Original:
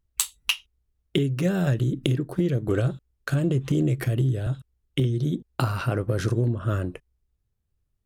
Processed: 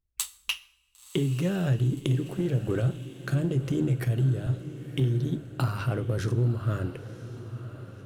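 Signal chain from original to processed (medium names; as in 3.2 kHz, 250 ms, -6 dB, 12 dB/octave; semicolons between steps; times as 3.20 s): bass shelf 190 Hz +3.5 dB; hum notches 50/100/150 Hz; waveshaping leveller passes 1; on a send: echo that smears into a reverb 1020 ms, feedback 50%, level -13 dB; on the sum: two-slope reverb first 0.52 s, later 2.9 s, from -27 dB, DRR 12.5 dB; trim -8.5 dB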